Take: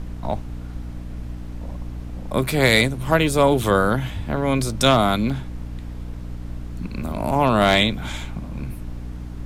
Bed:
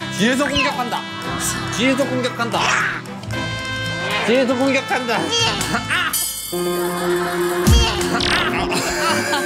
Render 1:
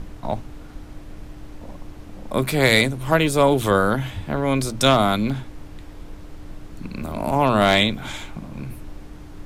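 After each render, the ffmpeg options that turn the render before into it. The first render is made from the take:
-af "bandreject=f=60:t=h:w=6,bandreject=f=120:t=h:w=6,bandreject=f=180:t=h:w=6,bandreject=f=240:t=h:w=6"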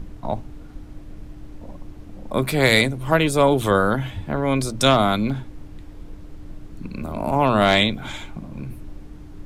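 -af "afftdn=nr=6:nf=-40"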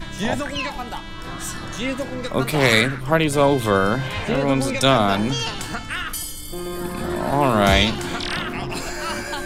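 -filter_complex "[1:a]volume=-9dB[a];[0:a][a]amix=inputs=2:normalize=0"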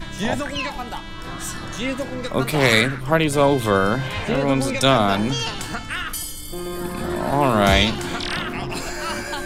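-af anull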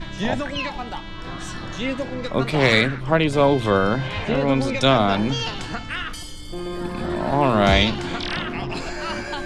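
-af "lowpass=4.9k,equalizer=f=1.4k:w=1.5:g=-2"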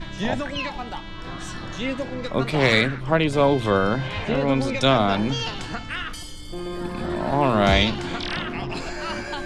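-af "volume=-1.5dB"

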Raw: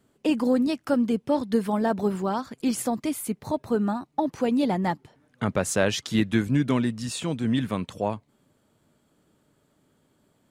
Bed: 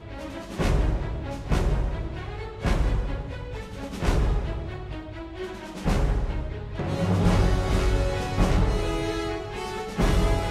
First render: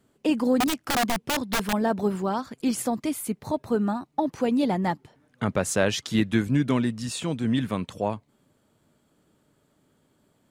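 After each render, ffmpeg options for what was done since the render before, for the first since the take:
-filter_complex "[0:a]asettb=1/sr,asplit=3[a][b][c];[a]atrim=end=0.604[d];[b]atrim=start=0.6:end=1.73,asetpts=PTS-STARTPTS,afade=t=in:d=0.004:c=qsin,afade=t=out:st=1.126:d=0.004:c=qsin,aeval=exprs='(mod(8.91*val(0)+1,2)-1)/8.91':c=same[e];[c]atrim=start=1.726[f];[d][e]acrossfade=d=0.004:c1=hsin:c2=qsin[g];[g][f]acrossfade=d=0.004:c1=qsin:c2=hsin"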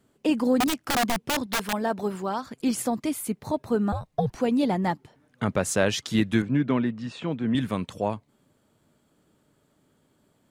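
-filter_complex "[0:a]asettb=1/sr,asplit=3[a][b][c];[a]atrim=end=1.464[d];[b]atrim=start=1.46:end=2.43,asetpts=PTS-STARTPTS,afade=t=in:d=0.004:c=qsin,afade=t=out:st=0.966:d=0.004:c=qsin,lowshelf=f=340:g=-7[e];[c]atrim=start=2.426[f];[d][e]acrossfade=d=0.004:c1=hsin:c2=qsin[g];[g][f]acrossfade=d=0.004:c1=qsin:c2=hsin,asettb=1/sr,asplit=3[h][i][j];[h]atrim=end=3.924[k];[i]atrim=start=3.92:end=4.39,asetpts=PTS-STARTPTS,afade=t=in:d=0.004:c=qsin,afade=t=out:st=0.466:d=0.004:c=qsin,afreqshift=-140[l];[j]atrim=start=4.386[m];[k][l]acrossfade=d=0.004:c1=hsin:c2=qsin[n];[n][m]acrossfade=d=0.004:c1=qsin:c2=hsin,asettb=1/sr,asplit=3[o][p][q];[o]atrim=end=6.424[r];[p]atrim=start=6.42:end=7.55,asetpts=PTS-STARTPTS,afade=t=in:d=0.004:c=qsin,afade=t=out:st=1.126:d=0.004:c=qsin,highpass=130,lowpass=2.6k[s];[q]atrim=start=7.546[t];[r][s]acrossfade=d=0.004:c1=hsin:c2=qsin[u];[u][t]acrossfade=d=0.004:c1=qsin:c2=hsin"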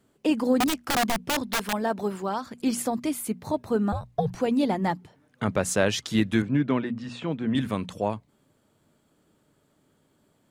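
-af "bandreject=f=60:t=h:w=6,bandreject=f=120:t=h:w=6,bandreject=f=180:t=h:w=6,bandreject=f=240:t=h:w=6"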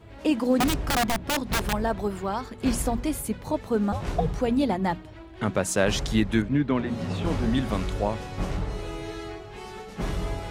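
-filter_complex "[1:a]volume=-7.5dB[a];[0:a][a]amix=inputs=2:normalize=0"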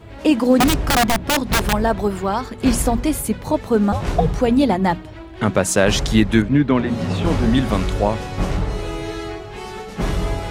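-af "volume=8dB,alimiter=limit=-1dB:level=0:latency=1"

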